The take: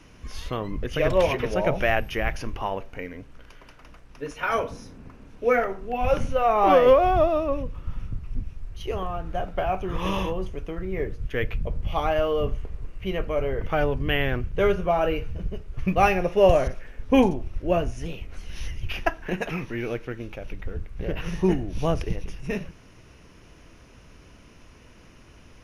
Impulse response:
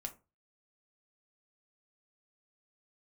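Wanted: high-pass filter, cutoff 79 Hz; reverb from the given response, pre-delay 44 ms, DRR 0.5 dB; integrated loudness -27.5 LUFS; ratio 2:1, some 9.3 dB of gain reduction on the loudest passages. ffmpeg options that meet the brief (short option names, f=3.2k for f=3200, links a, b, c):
-filter_complex "[0:a]highpass=79,acompressor=threshold=-30dB:ratio=2,asplit=2[a][b];[1:a]atrim=start_sample=2205,adelay=44[c];[b][c]afir=irnorm=-1:irlink=0,volume=2dB[d];[a][d]amix=inputs=2:normalize=0,volume=1.5dB"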